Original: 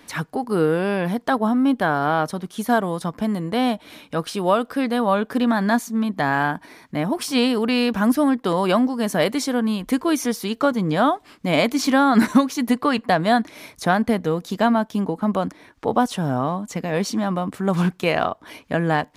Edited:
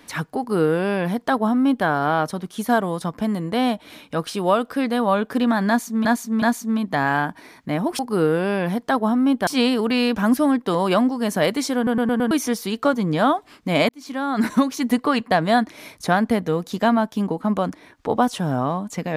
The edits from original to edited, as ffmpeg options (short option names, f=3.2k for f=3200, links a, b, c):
-filter_complex "[0:a]asplit=11[a][b][c][d][e][f][g][h][i][j][k];[a]atrim=end=6.052[l];[b]atrim=start=5.678:end=6.052[m];[c]atrim=start=5.678:end=7.252[n];[d]atrim=start=0.378:end=1.862[o];[e]atrim=start=7.248:end=9.652[p];[f]atrim=start=9.538:end=9.652[q];[g]atrim=start=9.538:end=9.652[r];[h]atrim=start=9.538:end=9.652[s];[i]atrim=start=9.538:end=9.652[t];[j]atrim=start=10.088:end=11.67,asetpts=PTS-STARTPTS,afade=t=out:st=1.578:d=0.004:c=hsin[u];[k]atrim=start=11.67,asetpts=PTS-STARTPTS,afade=t=in:d=0.91[v];[l][m]acrossfade=d=0.004:c1=hsin:c2=hsin[w];[w][n]acrossfade=d=0.004:c1=hsin:c2=hsin[x];[x][o]acrossfade=d=0.004:c1=hsin:c2=hsin[y];[y][p]acrossfade=d=0.004:c1=hsin:c2=hsin[z];[z][q]acrossfade=d=0.004:c1=hsin:c2=hsin[aa];[aa][r]acrossfade=d=0.004:c1=hsin:c2=hsin[ab];[ab][s]acrossfade=d=0.004:c1=hsin:c2=hsin[ac];[ac][t]acrossfade=d=0.004:c1=hsin:c2=hsin[ad];[u][v]concat=n=2:v=0:a=1[ae];[ad][ae]acrossfade=d=0.004:c1=hsin:c2=hsin"